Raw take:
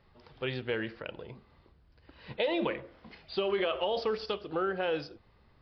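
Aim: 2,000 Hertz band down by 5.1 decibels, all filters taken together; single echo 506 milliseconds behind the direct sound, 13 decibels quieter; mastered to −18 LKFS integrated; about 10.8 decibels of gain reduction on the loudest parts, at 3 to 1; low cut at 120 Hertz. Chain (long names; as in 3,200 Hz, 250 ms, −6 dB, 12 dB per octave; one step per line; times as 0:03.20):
high-pass filter 120 Hz
parametric band 2,000 Hz −7 dB
downward compressor 3 to 1, threshold −42 dBFS
single-tap delay 506 ms −13 dB
level +26 dB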